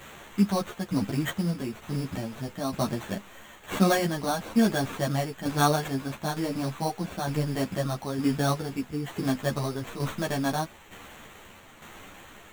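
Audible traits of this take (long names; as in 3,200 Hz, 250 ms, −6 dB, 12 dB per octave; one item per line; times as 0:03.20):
a quantiser's noise floor 8 bits, dither triangular
tremolo saw down 1.1 Hz, depth 60%
aliases and images of a low sample rate 5,000 Hz, jitter 0%
a shimmering, thickened sound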